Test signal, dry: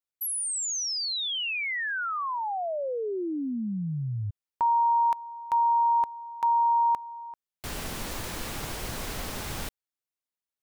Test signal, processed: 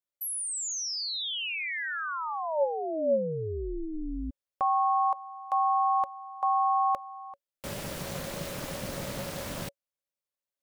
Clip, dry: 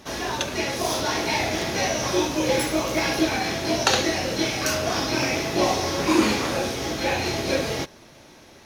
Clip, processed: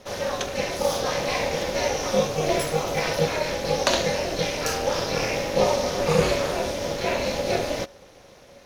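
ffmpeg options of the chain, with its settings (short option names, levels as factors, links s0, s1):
-af "aeval=exprs='val(0)*sin(2*PI*160*n/s)':c=same,equalizer=f=560:w=7.6:g=14.5"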